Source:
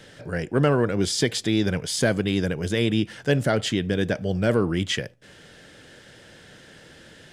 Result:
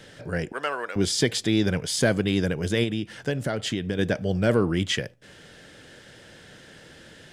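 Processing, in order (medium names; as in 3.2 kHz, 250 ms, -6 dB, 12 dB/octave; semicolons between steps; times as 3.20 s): 0.52–0.96 s: high-pass 900 Hz 12 dB/octave; 2.83–3.99 s: compression 10:1, threshold -23 dBFS, peak gain reduction 8.5 dB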